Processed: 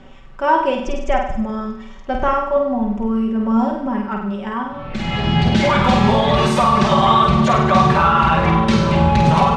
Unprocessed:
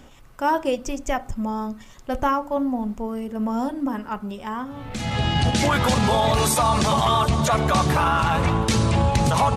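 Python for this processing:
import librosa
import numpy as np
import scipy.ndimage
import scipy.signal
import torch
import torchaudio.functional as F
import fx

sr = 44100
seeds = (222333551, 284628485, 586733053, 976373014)

y = scipy.signal.sosfilt(scipy.signal.butter(2, 3300.0, 'lowpass', fs=sr, output='sos'), x)
y = y + 0.66 * np.pad(y, (int(5.2 * sr / 1000.0), 0))[:len(y)]
y = fx.room_flutter(y, sr, wall_m=8.4, rt60_s=0.67)
y = y * 10.0 ** (3.0 / 20.0)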